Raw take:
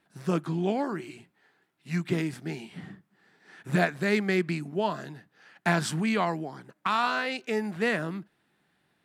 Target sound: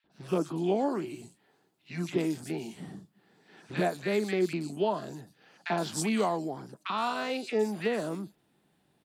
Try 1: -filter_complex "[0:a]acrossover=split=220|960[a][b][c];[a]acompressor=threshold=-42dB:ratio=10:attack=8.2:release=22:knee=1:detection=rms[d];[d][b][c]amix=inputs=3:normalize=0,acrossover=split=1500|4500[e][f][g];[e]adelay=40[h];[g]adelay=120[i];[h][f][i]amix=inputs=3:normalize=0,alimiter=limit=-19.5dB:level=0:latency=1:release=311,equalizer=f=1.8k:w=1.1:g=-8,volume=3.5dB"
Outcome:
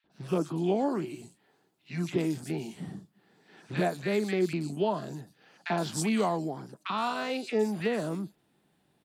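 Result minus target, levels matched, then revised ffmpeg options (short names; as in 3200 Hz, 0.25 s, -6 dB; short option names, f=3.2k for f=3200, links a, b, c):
compressor: peak gain reduction -8 dB
-filter_complex "[0:a]acrossover=split=220|960[a][b][c];[a]acompressor=threshold=-51dB:ratio=10:attack=8.2:release=22:knee=1:detection=rms[d];[d][b][c]amix=inputs=3:normalize=0,acrossover=split=1500|4500[e][f][g];[e]adelay=40[h];[g]adelay=120[i];[h][f][i]amix=inputs=3:normalize=0,alimiter=limit=-19.5dB:level=0:latency=1:release=311,equalizer=f=1.8k:w=1.1:g=-8,volume=3.5dB"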